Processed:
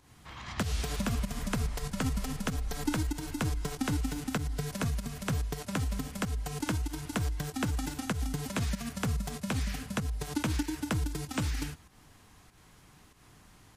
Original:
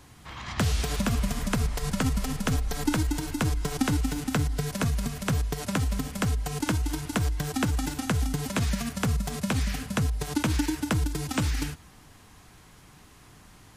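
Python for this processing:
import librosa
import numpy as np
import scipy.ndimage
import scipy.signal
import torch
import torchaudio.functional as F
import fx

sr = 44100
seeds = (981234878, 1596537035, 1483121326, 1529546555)

y = fx.volume_shaper(x, sr, bpm=96, per_beat=1, depth_db=-9, release_ms=164.0, shape='fast start')
y = F.gain(torch.from_numpy(y), -5.0).numpy()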